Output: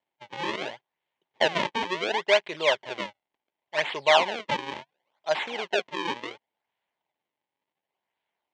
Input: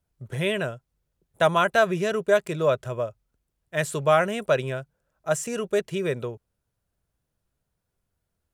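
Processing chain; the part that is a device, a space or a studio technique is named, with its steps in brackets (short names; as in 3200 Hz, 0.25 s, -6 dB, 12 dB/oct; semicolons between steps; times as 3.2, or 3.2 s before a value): circuit-bent sampling toy (decimation with a swept rate 36×, swing 160% 0.7 Hz; speaker cabinet 470–5300 Hz, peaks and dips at 480 Hz -4 dB, 890 Hz +8 dB, 1300 Hz -8 dB, 2100 Hz +6 dB, 3100 Hz +6 dB, 5000 Hz -5 dB)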